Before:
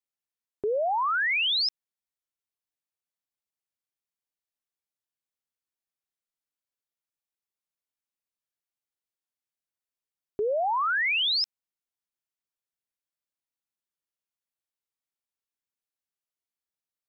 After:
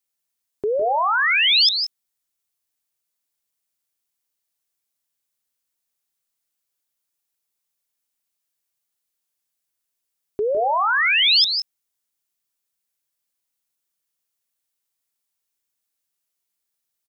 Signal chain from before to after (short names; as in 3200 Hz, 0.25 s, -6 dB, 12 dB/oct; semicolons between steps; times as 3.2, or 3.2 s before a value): high shelf 4500 Hz +9.5 dB; on a send: tapped delay 0.157/0.178 s -8.5/-11.5 dB; on the sum: gain +5 dB